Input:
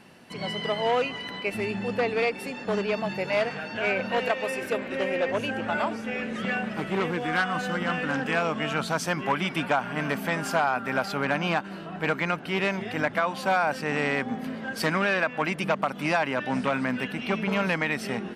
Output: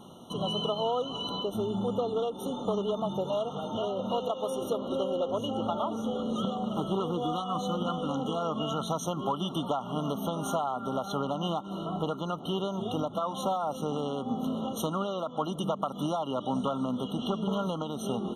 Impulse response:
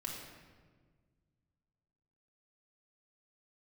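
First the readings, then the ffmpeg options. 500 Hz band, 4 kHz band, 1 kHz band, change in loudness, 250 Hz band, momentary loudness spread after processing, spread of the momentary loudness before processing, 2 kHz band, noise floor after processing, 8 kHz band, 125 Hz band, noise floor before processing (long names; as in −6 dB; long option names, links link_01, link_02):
−3.0 dB, −2.0 dB, −4.0 dB, −4.5 dB, −1.5 dB, 3 LU, 5 LU, below −25 dB, −41 dBFS, −2.5 dB, −1.5 dB, −38 dBFS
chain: -af "acompressor=threshold=-30dB:ratio=6,afftfilt=real='re*eq(mod(floor(b*sr/1024/1400),2),0)':imag='im*eq(mod(floor(b*sr/1024/1400),2),0)':win_size=1024:overlap=0.75,volume=4dB"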